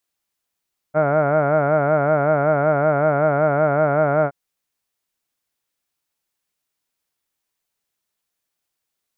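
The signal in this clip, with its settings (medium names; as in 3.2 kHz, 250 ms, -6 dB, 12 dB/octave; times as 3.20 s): formant vowel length 3.37 s, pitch 148 Hz, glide 0 st, vibrato depth 1 st, F1 640 Hz, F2 1.4 kHz, F3 2.2 kHz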